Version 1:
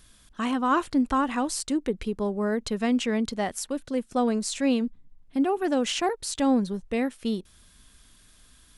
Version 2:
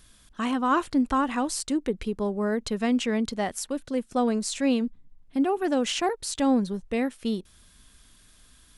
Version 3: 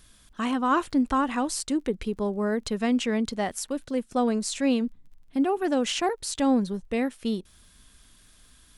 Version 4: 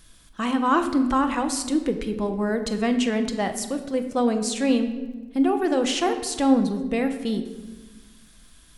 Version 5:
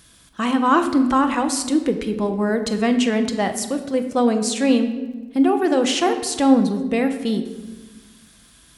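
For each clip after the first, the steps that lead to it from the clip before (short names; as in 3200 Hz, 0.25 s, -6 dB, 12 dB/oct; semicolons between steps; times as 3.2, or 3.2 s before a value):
nothing audible
crackle 25/s -50 dBFS
shoebox room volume 860 m³, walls mixed, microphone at 0.73 m; gain +2 dB
HPF 66 Hz 12 dB/oct; gain +4 dB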